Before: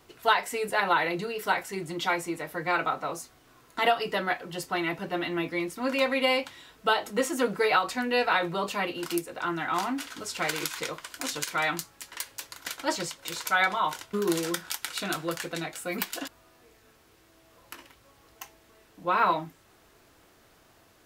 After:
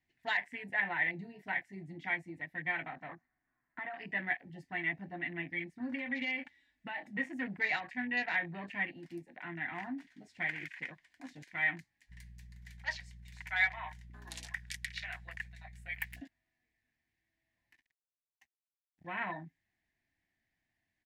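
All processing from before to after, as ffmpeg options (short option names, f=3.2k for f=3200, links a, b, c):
-filter_complex "[0:a]asettb=1/sr,asplit=3[a][b][c];[a]atrim=end=3.094[d];[b]atrim=start=3.09:end=3.94,asetpts=PTS-STARTPTS,afade=t=in:d=0.004:c=qsin,afade=t=out:st=0.846:d=0.004:c=qsin,equalizer=f=93:w=1.6:g=-9,acompressor=threshold=-29dB:ratio=8:attack=3.2:release=140:knee=1:detection=peak,lowpass=f=1.3k:t=q:w=3.3[e];[c]atrim=start=3.936[f];[d][e]acrossfade=d=0.004:c1=hsin:c2=qsin[g];[g][f]acrossfade=d=0.004:c1=qsin:c2=hsin,asettb=1/sr,asplit=3[h][i][j];[h]atrim=end=5.804[k];[i]atrim=start=5.8:end=7.17,asetpts=PTS-STARTPTS,afade=t=in:d=0.004:c=qsin,afade=t=out:st=1.366:d=0.004:c=qsin,aecho=1:1:3.5:0.68,atrim=end_sample=60417,acompressor=threshold=-24dB:ratio=5:attack=3.2:release=140:knee=1:detection=peak[l];[j]atrim=start=7.166[m];[k][l]acrossfade=d=0.004:c1=hsin:c2=qsin[n];[n][m]acrossfade=d=0.004:c1=qsin:c2=hsin,asettb=1/sr,asplit=3[o][p][q];[o]atrim=end=12.104[r];[p]atrim=start=12.1:end=16.21,asetpts=PTS-STARTPTS,afade=t=in:d=0.004:c=qsin,afade=t=out:st=4.106:d=0.004:c=qsin,highpass=f=670:w=0.5412,highpass=f=670:w=1.3066,aeval=exprs='val(0)+0.00708*(sin(2*PI*60*n/s)+sin(2*PI*2*60*n/s)/2+sin(2*PI*3*60*n/s)/3+sin(2*PI*4*60*n/s)/4+sin(2*PI*5*60*n/s)/5)':c=same,highshelf=f=6.4k:g=9[s];[q]atrim=start=16.206[t];[r][s]acrossfade=d=0.004:c1=hsin:c2=qsin[u];[u][t]acrossfade=d=0.004:c1=qsin:c2=hsin,asettb=1/sr,asplit=3[v][w][x];[v]atrim=end=17.744[y];[w]atrim=start=17.74:end=19.07,asetpts=PTS-STARTPTS,afade=t=in:d=0.004:c=qsin,afade=t=out:st=1.326:d=0.004:c=qsin,bandreject=f=230:w=6,acrusher=bits=6:mix=0:aa=0.5[z];[x]atrim=start=19.066[aa];[y][z]acrossfade=d=0.004:c1=hsin:c2=qsin[ab];[ab][aa]acrossfade=d=0.004:c1=qsin:c2=hsin,afwtdn=0.0178,firequalizer=gain_entry='entry(250,0);entry(460,-18);entry(720,-4);entry(1300,-18);entry(1800,10);entry(2800,-3);entry(14000,-18)':delay=0.05:min_phase=1,volume=-7dB"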